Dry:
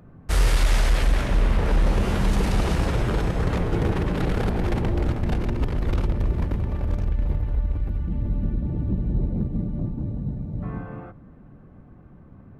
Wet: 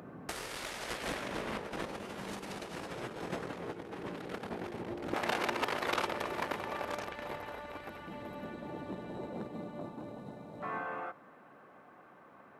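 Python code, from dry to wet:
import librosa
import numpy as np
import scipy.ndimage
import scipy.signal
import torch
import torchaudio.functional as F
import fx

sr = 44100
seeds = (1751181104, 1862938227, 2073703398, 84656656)

y = fx.highpass(x, sr, hz=fx.steps((0.0, 270.0), (5.14, 750.0)), slope=12)
y = fx.over_compress(y, sr, threshold_db=-36.0, ratio=-0.5)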